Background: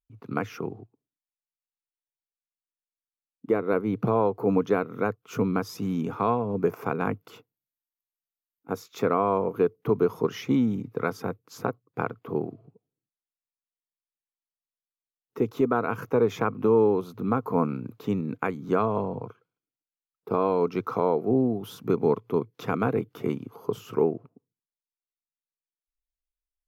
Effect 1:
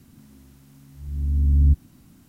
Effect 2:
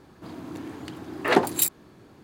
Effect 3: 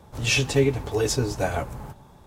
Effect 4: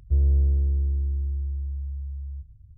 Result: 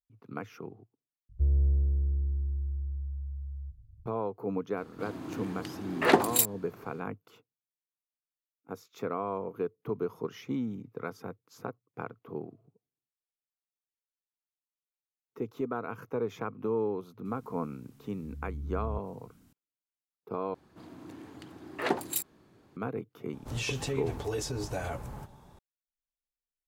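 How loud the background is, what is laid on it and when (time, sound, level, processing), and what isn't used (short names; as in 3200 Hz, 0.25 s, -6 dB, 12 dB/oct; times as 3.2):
background -10 dB
1.29 replace with 4 -5 dB
4.77 add 2 -2 dB
17.25 add 1 -9 dB + compressor 2:1, threshold -33 dBFS
20.54 replace with 2 -9.5 dB
23.33 add 3 -5 dB + limiter -20 dBFS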